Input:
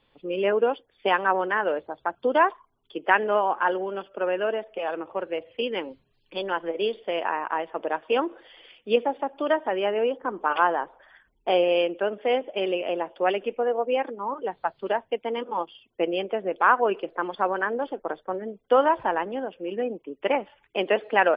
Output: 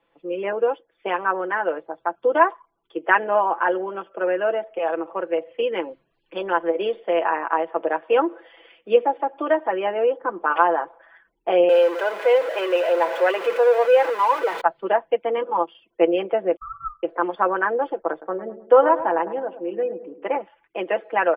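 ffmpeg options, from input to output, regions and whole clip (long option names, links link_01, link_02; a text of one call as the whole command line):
ffmpeg -i in.wav -filter_complex "[0:a]asettb=1/sr,asplit=3[link_01][link_02][link_03];[link_01]atrim=end=11.694[link_04];[link_02]atrim=start=11.69:end=14.61,asetpts=PTS-STARTPTS,afade=type=in:duration=0.004:curve=qsin,afade=type=out:start_time=2.916:duration=0.004:curve=qsin,aeval=exprs='val(0)+0.5*0.0531*sgn(val(0))':channel_layout=same,highpass=510,aecho=1:1:2:0.31,atrim=end_sample=128772[link_05];[link_03]atrim=start=14.606[link_06];[link_04][link_05]acrossfade=duration=0.004:curve1=hsin:curve2=qsin[link_07];[link_07][link_06]acrossfade=duration=0.004:curve1=qsin:curve2=hsin,asettb=1/sr,asplit=3[link_08][link_09][link_10];[link_08]atrim=end=16.564[link_11];[link_09]atrim=start=16.56:end=17.03,asetpts=PTS-STARTPTS,afade=type=in:duration=0.004:curve=qsin,afade=type=out:start_time=0.466:duration=0.004:curve=qsin,agate=range=-33dB:threshold=-39dB:ratio=3:release=100:detection=peak,asuperpass=centerf=610:order=12:qfactor=3.6,aeval=exprs='val(0)*sin(2*PI*630*n/s)':channel_layout=same[link_12];[link_10]atrim=start=17.026[link_13];[link_11][link_12]acrossfade=duration=0.004:curve1=hsin:curve2=qsin[link_14];[link_14][link_13]acrossfade=duration=0.004:curve1=qsin:curve2=hsin,asettb=1/sr,asplit=3[link_15][link_16][link_17];[link_15]atrim=end=18.114[link_18];[link_16]atrim=start=18.11:end=20.41,asetpts=PTS-STARTPTS,afade=type=in:duration=0.004:curve=qsin,afade=type=out:start_time=2.296:duration=0.004:curve=qsin,aemphasis=mode=reproduction:type=75kf,asplit=2[link_19][link_20];[link_20]adelay=105,lowpass=frequency=1000:poles=1,volume=-11dB,asplit=2[link_21][link_22];[link_22]adelay=105,lowpass=frequency=1000:poles=1,volume=0.52,asplit=2[link_23][link_24];[link_24]adelay=105,lowpass=frequency=1000:poles=1,volume=0.52,asplit=2[link_25][link_26];[link_26]adelay=105,lowpass=frequency=1000:poles=1,volume=0.52,asplit=2[link_27][link_28];[link_28]adelay=105,lowpass=frequency=1000:poles=1,volume=0.52,asplit=2[link_29][link_30];[link_30]adelay=105,lowpass=frequency=1000:poles=1,volume=0.52[link_31];[link_19][link_21][link_23][link_25][link_27][link_29][link_31]amix=inputs=7:normalize=0,atrim=end_sample=101430[link_32];[link_17]atrim=start=20.406[link_33];[link_18][link_32]acrossfade=duration=0.004:curve1=hsin:curve2=qsin[link_34];[link_34][link_33]acrossfade=duration=0.004:curve1=qsin:curve2=hsin,acrossover=split=250 2500:gain=0.224 1 0.126[link_35][link_36][link_37];[link_35][link_36][link_37]amix=inputs=3:normalize=0,aecho=1:1:6:0.6,dynaudnorm=framelen=280:gausssize=17:maxgain=6dB" out.wav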